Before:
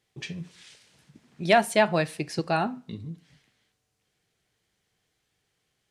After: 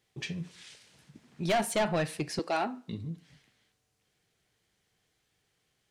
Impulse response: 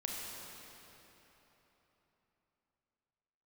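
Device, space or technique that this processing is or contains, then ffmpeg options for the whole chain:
saturation between pre-emphasis and de-emphasis: -filter_complex "[0:a]highshelf=frequency=8100:gain=6.5,asoftclip=type=tanh:threshold=-23dB,highshelf=frequency=8100:gain=-6.5,asettb=1/sr,asplit=3[link_01][link_02][link_03];[link_01]atrim=end=2.394[link_04];[link_02]atrim=start=2.39:end=2.88,asetpts=PTS-STARTPTS,afade=type=in:duration=0.004:curve=qsin,afade=type=out:start_time=0.486:duration=0.004:curve=qsin,highpass=frequency=260:width=0.5412,highpass=frequency=260:width=1.3066[link_05];[link_03]atrim=start=2.876[link_06];[link_04][link_05]acrossfade=duration=0.004:curve1=hsin:curve2=qsin[link_07];[link_07][link_06]acrossfade=duration=0.004:curve1=qsin:curve2=hsin"

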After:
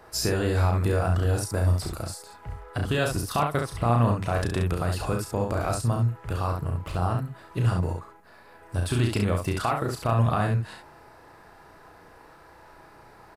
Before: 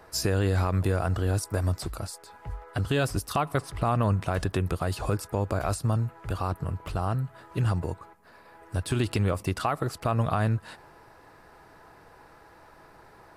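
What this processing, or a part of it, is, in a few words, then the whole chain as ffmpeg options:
slapback doubling: -filter_complex "[0:a]asplit=3[link_01][link_02][link_03];[link_02]adelay=34,volume=-5dB[link_04];[link_03]adelay=68,volume=-5dB[link_05];[link_01][link_04][link_05]amix=inputs=3:normalize=0"

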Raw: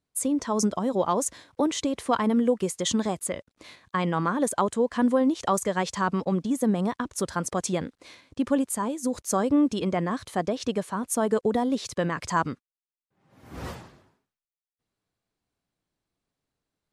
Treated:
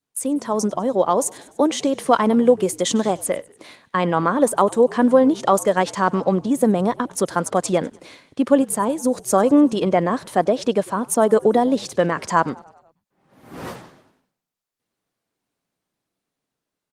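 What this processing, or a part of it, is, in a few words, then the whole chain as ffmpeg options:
video call: -filter_complex "[0:a]asplit=3[link_01][link_02][link_03];[link_01]afade=type=out:start_time=1.11:duration=0.02[link_04];[link_02]highshelf=frequency=3000:gain=2.5,afade=type=in:start_time=1.11:duration=0.02,afade=type=out:start_time=3.12:duration=0.02[link_05];[link_03]afade=type=in:start_time=3.12:duration=0.02[link_06];[link_04][link_05][link_06]amix=inputs=3:normalize=0,asplit=6[link_07][link_08][link_09][link_10][link_11][link_12];[link_08]adelay=98,afreqshift=-65,volume=-22.5dB[link_13];[link_09]adelay=196,afreqshift=-130,volume=-26.8dB[link_14];[link_10]adelay=294,afreqshift=-195,volume=-31.1dB[link_15];[link_11]adelay=392,afreqshift=-260,volume=-35.4dB[link_16];[link_12]adelay=490,afreqshift=-325,volume=-39.7dB[link_17];[link_07][link_13][link_14][link_15][link_16][link_17]amix=inputs=6:normalize=0,adynamicequalizer=threshold=0.0141:dfrequency=600:dqfactor=1.2:tfrequency=600:tqfactor=1.2:attack=5:release=100:ratio=0.375:range=2.5:mode=boostabove:tftype=bell,highpass=160,dynaudnorm=framelen=320:gausssize=9:maxgain=4dB,volume=2.5dB" -ar 48000 -c:a libopus -b:a 24k

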